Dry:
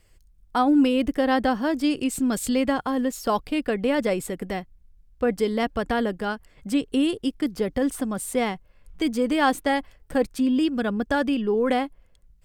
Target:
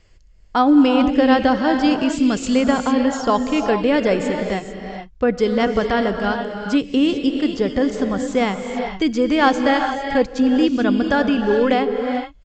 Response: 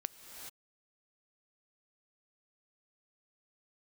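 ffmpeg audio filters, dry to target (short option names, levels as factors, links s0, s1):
-filter_complex "[1:a]atrim=start_sample=2205,asetrate=42336,aresample=44100[s0];[0:a][s0]afir=irnorm=-1:irlink=0,aresample=16000,aresample=44100,volume=2.24"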